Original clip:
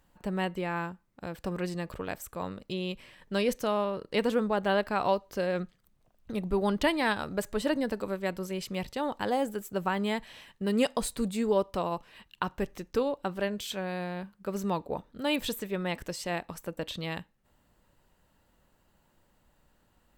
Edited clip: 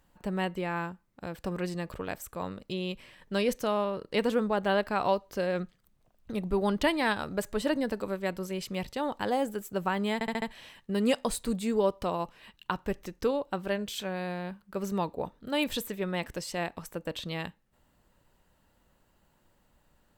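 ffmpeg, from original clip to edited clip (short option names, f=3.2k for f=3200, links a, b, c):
-filter_complex "[0:a]asplit=5[a][b][c][d][e];[a]atrim=end=10.212[f];[b]atrim=start=10.138:end=10.212[g];[c]atrim=start=10.138:end=10.212[h];[d]atrim=start=10.138:end=10.212[i];[e]atrim=start=10.138[j];[f][g]acrossfade=d=0.004:c1=hsin:c2=hsin[k];[k][h]acrossfade=d=0.004:c1=hsin:c2=hsin[l];[l][i]acrossfade=d=0.004:c1=hsin:c2=hsin[m];[m][j]acrossfade=d=0.004:c1=hsin:c2=hsin"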